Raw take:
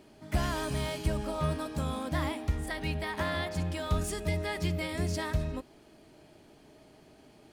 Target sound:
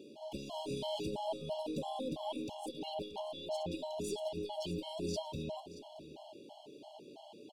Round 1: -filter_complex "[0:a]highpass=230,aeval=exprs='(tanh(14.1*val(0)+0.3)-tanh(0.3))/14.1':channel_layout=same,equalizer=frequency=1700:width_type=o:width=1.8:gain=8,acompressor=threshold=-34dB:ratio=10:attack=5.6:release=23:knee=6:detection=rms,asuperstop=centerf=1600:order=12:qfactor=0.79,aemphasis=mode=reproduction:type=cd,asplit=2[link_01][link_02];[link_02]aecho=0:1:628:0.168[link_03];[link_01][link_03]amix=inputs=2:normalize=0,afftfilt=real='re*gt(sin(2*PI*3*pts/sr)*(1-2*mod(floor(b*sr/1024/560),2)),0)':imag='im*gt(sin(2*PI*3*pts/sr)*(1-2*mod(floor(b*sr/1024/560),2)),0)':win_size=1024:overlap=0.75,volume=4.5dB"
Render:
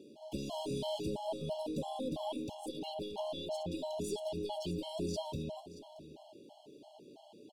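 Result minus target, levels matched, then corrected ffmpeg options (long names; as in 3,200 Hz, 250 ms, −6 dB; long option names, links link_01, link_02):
2,000 Hz band −4.0 dB
-filter_complex "[0:a]highpass=230,aeval=exprs='(tanh(14.1*val(0)+0.3)-tanh(0.3))/14.1':channel_layout=same,equalizer=frequency=1700:width_type=o:width=1.8:gain=19,acompressor=threshold=-34dB:ratio=10:attack=5.6:release=23:knee=6:detection=rms,asuperstop=centerf=1600:order=12:qfactor=0.79,aemphasis=mode=reproduction:type=cd,asplit=2[link_01][link_02];[link_02]aecho=0:1:628:0.168[link_03];[link_01][link_03]amix=inputs=2:normalize=0,afftfilt=real='re*gt(sin(2*PI*3*pts/sr)*(1-2*mod(floor(b*sr/1024/560),2)),0)':imag='im*gt(sin(2*PI*3*pts/sr)*(1-2*mod(floor(b*sr/1024/560),2)),0)':win_size=1024:overlap=0.75,volume=4.5dB"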